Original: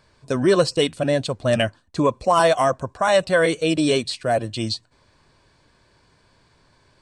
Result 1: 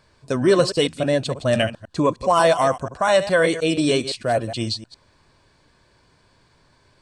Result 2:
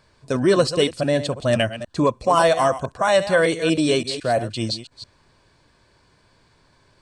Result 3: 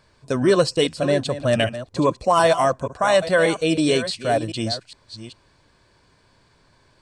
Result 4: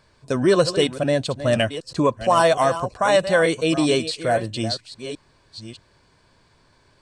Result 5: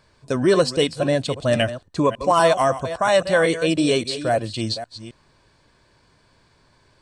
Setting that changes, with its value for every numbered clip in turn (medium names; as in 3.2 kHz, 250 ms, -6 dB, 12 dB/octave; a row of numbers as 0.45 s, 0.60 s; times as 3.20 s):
chunks repeated in reverse, time: 103 ms, 168 ms, 411 ms, 644 ms, 269 ms